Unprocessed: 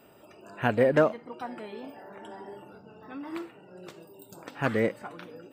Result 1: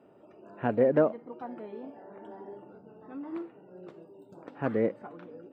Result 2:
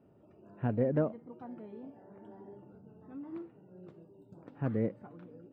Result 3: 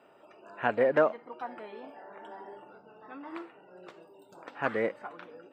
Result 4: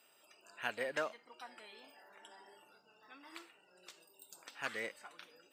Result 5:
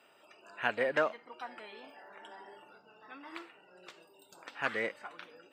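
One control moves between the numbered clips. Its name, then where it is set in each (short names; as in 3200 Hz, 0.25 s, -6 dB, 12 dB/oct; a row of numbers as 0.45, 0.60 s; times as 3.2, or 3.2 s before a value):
band-pass, frequency: 340, 110, 1000, 6600, 2600 Hz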